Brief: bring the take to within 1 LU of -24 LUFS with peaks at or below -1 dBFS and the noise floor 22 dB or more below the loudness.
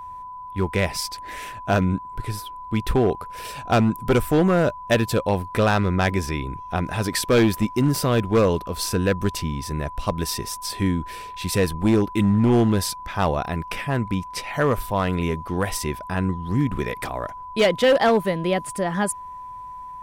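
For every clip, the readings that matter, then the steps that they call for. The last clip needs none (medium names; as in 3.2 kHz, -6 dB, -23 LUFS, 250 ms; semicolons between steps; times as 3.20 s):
clipped samples 1.4%; clipping level -12.0 dBFS; steady tone 1 kHz; tone level -34 dBFS; loudness -22.5 LUFS; peak level -12.0 dBFS; loudness target -24.0 LUFS
-> clip repair -12 dBFS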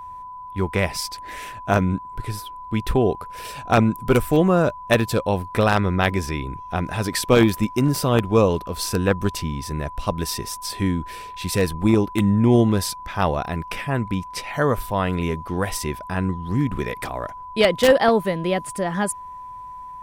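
clipped samples 0.0%; steady tone 1 kHz; tone level -34 dBFS
-> band-stop 1 kHz, Q 30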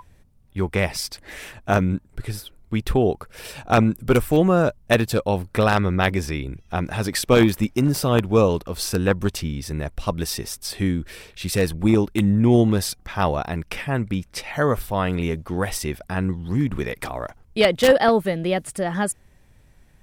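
steady tone not found; loudness -22.0 LUFS; peak level -2.5 dBFS; loudness target -24.0 LUFS
-> trim -2 dB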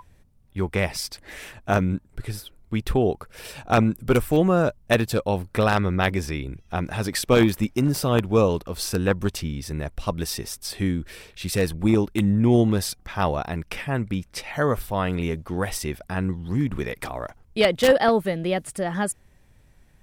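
loudness -24.0 LUFS; peak level -4.5 dBFS; noise floor -56 dBFS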